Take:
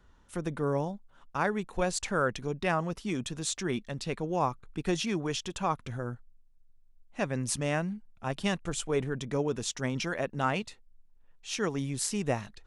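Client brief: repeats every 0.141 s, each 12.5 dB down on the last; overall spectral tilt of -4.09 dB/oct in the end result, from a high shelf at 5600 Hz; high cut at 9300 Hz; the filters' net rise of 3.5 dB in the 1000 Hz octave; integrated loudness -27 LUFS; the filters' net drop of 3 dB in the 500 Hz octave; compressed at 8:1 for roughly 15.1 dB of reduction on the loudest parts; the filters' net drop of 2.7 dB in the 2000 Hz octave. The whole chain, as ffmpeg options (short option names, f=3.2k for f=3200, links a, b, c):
-af "lowpass=9.3k,equalizer=f=500:t=o:g=-5.5,equalizer=f=1k:t=o:g=8,equalizer=f=2k:t=o:g=-7.5,highshelf=f=5.6k:g=5,acompressor=threshold=-36dB:ratio=8,aecho=1:1:141|282|423:0.237|0.0569|0.0137,volume=14dB"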